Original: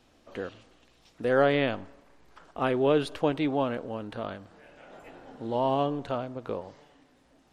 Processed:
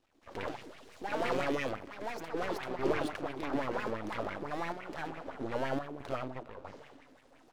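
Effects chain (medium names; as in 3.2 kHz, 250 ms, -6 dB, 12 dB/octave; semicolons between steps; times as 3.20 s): hum notches 60/120/180/240/300/360/420 Hz; in parallel at +1 dB: compression, threshold -38 dBFS, peak gain reduction 19 dB; on the sum: trance gate ".xxxxxxxxxxx.xx" 70 bpm -12 dB; saturation -24.5 dBFS, distortion -8 dB; ever faster or slower copies 129 ms, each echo +4 st, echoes 2; on a send: feedback delay 244 ms, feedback 57%, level -21.5 dB; on the sum: half-wave rectifier; sweeping bell 5.9 Hz 270–2400 Hz +13 dB; trim -5 dB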